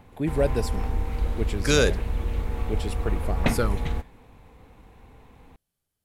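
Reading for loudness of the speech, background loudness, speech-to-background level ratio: −27.5 LKFS, −30.0 LKFS, 2.5 dB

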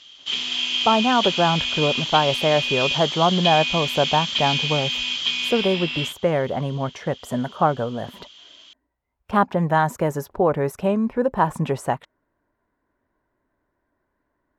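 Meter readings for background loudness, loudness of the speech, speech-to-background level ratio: −22.5 LKFS, −22.5 LKFS, 0.0 dB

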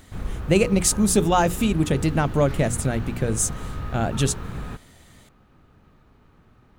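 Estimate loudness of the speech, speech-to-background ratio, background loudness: −22.0 LKFS, 12.0 dB, −34.0 LKFS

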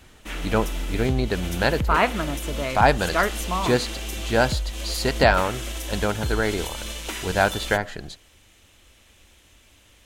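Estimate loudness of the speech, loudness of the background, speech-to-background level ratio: −24.0 LKFS, −31.0 LKFS, 7.0 dB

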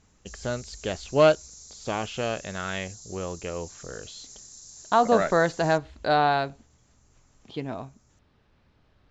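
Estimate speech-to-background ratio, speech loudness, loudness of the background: 18.5 dB, −26.0 LKFS, −44.5 LKFS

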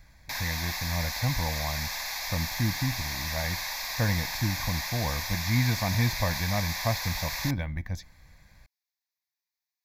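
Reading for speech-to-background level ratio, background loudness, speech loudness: 0.5 dB, −32.0 LKFS, −31.5 LKFS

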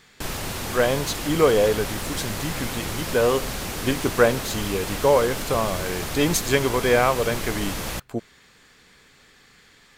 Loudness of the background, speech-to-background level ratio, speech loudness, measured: −29.5 LKFS, 6.0 dB, −23.5 LKFS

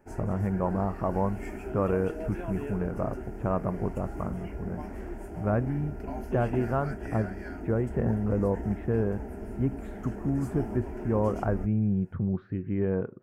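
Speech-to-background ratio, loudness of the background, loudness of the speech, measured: 8.5 dB, −39.0 LKFS, −30.5 LKFS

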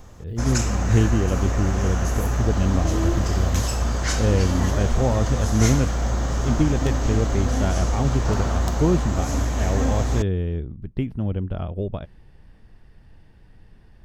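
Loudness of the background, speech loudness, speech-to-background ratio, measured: −24.5 LKFS, −25.0 LKFS, −0.5 dB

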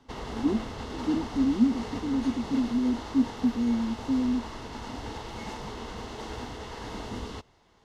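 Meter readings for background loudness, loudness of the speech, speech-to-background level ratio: −38.5 LKFS, −28.0 LKFS, 10.5 dB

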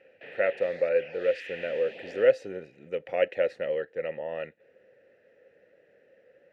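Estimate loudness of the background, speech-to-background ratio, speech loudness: −43.0 LKFS, 14.0 dB, −29.0 LKFS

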